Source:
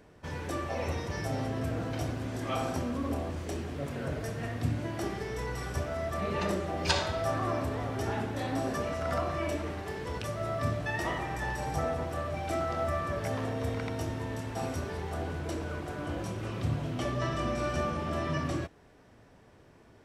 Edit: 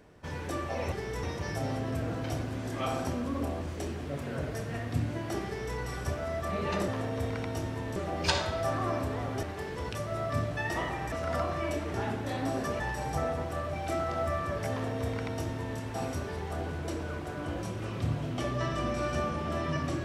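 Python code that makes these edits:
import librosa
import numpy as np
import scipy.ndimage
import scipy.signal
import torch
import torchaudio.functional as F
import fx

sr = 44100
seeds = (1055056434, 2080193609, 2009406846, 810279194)

y = fx.edit(x, sr, fx.duplicate(start_s=5.15, length_s=0.31, to_s=0.92),
    fx.swap(start_s=8.04, length_s=0.86, other_s=9.72, other_length_s=1.69),
    fx.duplicate(start_s=13.32, length_s=1.08, to_s=6.57), tone=tone)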